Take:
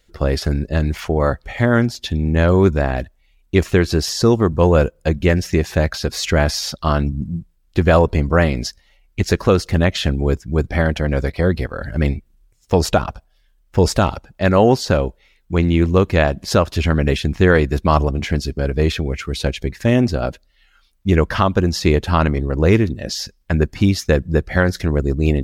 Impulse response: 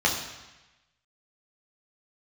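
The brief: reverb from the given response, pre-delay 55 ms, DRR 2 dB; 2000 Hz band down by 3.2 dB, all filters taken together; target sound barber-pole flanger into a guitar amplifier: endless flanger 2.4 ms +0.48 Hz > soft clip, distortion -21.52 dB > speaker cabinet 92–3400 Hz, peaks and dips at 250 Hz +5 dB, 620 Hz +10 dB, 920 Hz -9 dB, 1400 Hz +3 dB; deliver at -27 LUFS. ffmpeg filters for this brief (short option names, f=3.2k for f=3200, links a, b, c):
-filter_complex "[0:a]equalizer=f=2k:t=o:g=-5.5,asplit=2[a][b];[1:a]atrim=start_sample=2205,adelay=55[c];[b][c]afir=irnorm=-1:irlink=0,volume=-16.5dB[d];[a][d]amix=inputs=2:normalize=0,asplit=2[e][f];[f]adelay=2.4,afreqshift=0.48[g];[e][g]amix=inputs=2:normalize=1,asoftclip=threshold=-6dB,highpass=92,equalizer=f=250:t=q:w=4:g=5,equalizer=f=620:t=q:w=4:g=10,equalizer=f=920:t=q:w=4:g=-9,equalizer=f=1.4k:t=q:w=4:g=3,lowpass=f=3.4k:w=0.5412,lowpass=f=3.4k:w=1.3066,volume=-8.5dB"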